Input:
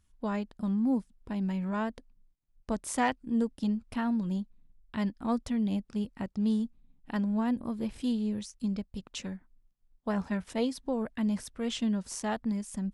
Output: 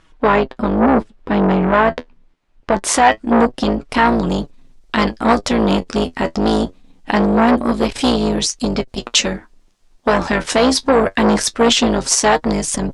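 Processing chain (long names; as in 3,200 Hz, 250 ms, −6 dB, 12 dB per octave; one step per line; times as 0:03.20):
sub-octave generator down 2 octaves, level −3 dB
bass and treble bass −15 dB, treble −9 dB, from 0:02.79 treble 0 dB, from 0:03.89 treble +7 dB
flanger 0.24 Hz, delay 6.1 ms, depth 6.3 ms, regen +47%
high-frequency loss of the air 79 metres
boost into a limiter +31.5 dB
saturating transformer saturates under 680 Hz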